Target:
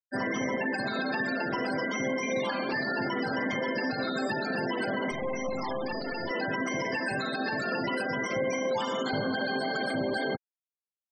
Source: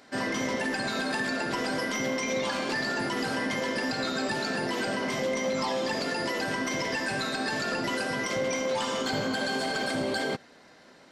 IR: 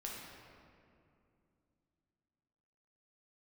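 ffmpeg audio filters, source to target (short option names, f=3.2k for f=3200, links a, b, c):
-filter_complex "[0:a]asettb=1/sr,asplit=3[a][b][c];[a]atrim=end=5.114[d];[b]atrim=start=5.11:end=6.31,asetpts=PTS-STARTPTS,afade=t=in:d=0.004:c=qsin,afade=t=out:st=1.196:d=0.004:c=qsin,aeval=exprs='clip(val(0),-1,0.0119)':c=same[e];[c]atrim=start=6.306[f];[d][e]acrossfade=d=0.004:c1=hsin:c2=qsin[g];[g][f]acrossfade=d=0.004:c1=qsin:c2=hsin,afftfilt=real='re*gte(hypot(re,im),0.0316)':imag='im*gte(hypot(re,im),0.0316)':win_size=1024:overlap=0.75,acrossover=split=3300[h][i];[i]acompressor=threshold=-43dB:ratio=4:attack=1:release=60[j];[h][j]amix=inputs=2:normalize=0"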